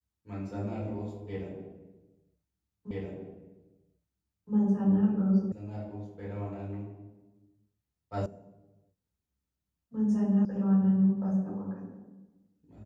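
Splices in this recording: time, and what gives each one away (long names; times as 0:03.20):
0:02.91: the same again, the last 1.62 s
0:05.52: cut off before it has died away
0:08.26: cut off before it has died away
0:10.45: cut off before it has died away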